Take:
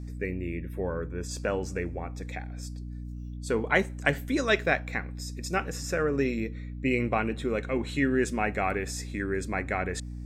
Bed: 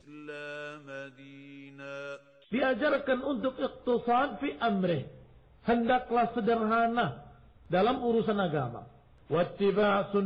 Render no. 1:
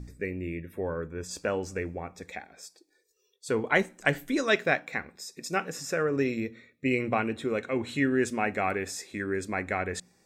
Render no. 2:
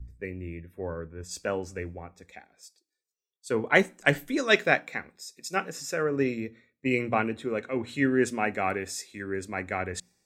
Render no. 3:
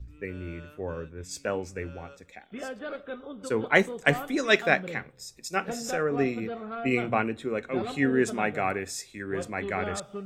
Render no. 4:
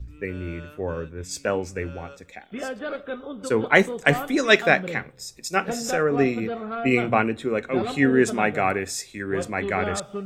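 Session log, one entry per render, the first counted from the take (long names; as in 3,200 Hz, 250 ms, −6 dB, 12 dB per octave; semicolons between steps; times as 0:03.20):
hum removal 60 Hz, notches 5
multiband upward and downward expander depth 70%
mix in bed −9.5 dB
level +5.5 dB; brickwall limiter −2 dBFS, peak gain reduction 3 dB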